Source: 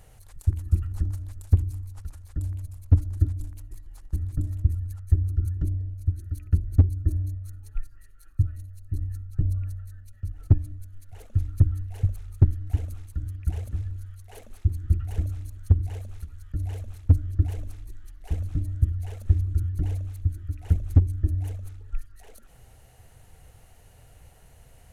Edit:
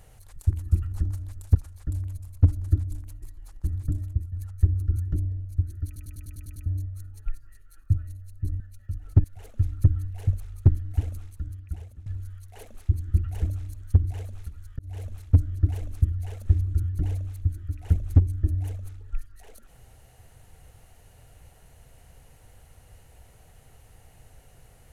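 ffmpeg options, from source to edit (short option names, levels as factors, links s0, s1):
-filter_complex "[0:a]asplit=16[s0][s1][s2][s3][s4][s5][s6][s7][s8][s9][s10][s11][s12][s13][s14][s15];[s0]atrim=end=1.552[s16];[s1]atrim=start=2.038:end=4.81,asetpts=PTS-STARTPTS,afade=t=out:st=2.392:d=0.38:silence=0.266073[s17];[s2]atrim=start=4.81:end=6.452,asetpts=PTS-STARTPTS,afade=t=in:d=0.004:c=hsin:silence=0.266073[s18];[s3]atrim=start=6.348:end=6.452[s19];[s4]atrim=start=6.348:end=6.452[s20];[s5]atrim=start=6.348:end=6.452[s21];[s6]atrim=start=6.348:end=6.452[s22];[s7]atrim=start=6.348:end=6.452[s23];[s8]atrim=start=6.348:end=6.452[s24];[s9]atrim=start=6.348:end=6.452[s25];[s10]atrim=start=7.148:end=9.092[s26];[s11]atrim=start=9.938:end=10.582[s27];[s12]atrim=start=10.998:end=13.82,asetpts=PTS-STARTPTS,afade=t=out:st=1.882:d=0.94:silence=0.125893[s28];[s13]atrim=start=13.82:end=16.55,asetpts=PTS-STARTPTS,afade=t=in:d=0.004:c=hsin:silence=0.125893,afade=t=out:st=2.726:d=0.004:c=hsin[s29];[s14]atrim=start=16.55:end=17.782,asetpts=PTS-STARTPTS,afade=t=in:d=0.25[s30];[s15]atrim=start=18.818[s31];[s17][s18]concat=n=2:v=0:a=1[s32];[s16][s32]acrossfade=d=0.004:c1=hsin:c2=hsin[s33];[s33][s19]acrossfade=d=0.004:c1=hsin:c2=hsin[s34];[s34][s20]acrossfade=d=0.004:c1=hsin:c2=hsin[s35];[s35][s21]acrossfade=d=0.004:c1=hsin:c2=hsin[s36];[s36][s22]acrossfade=d=0.004:c1=hsin:c2=hsin[s37];[s37][s23]acrossfade=d=0.004:c1=hsin:c2=hsin[s38];[s38][s24]acrossfade=d=0.004:c1=hsin:c2=hsin[s39];[s39][s25]acrossfade=d=0.004:c1=hsin:c2=hsin[s40];[s40][s26]acrossfade=d=0.004:c1=hsin:c2=hsin[s41];[s41][s27]acrossfade=d=0.004:c1=hsin:c2=hsin[s42];[s28][s29][s30]concat=n=3:v=0:a=1[s43];[s42][s43]acrossfade=d=0.004:c1=hsin:c2=hsin[s44];[s44][s31]acrossfade=d=0.004:c1=hsin:c2=hsin"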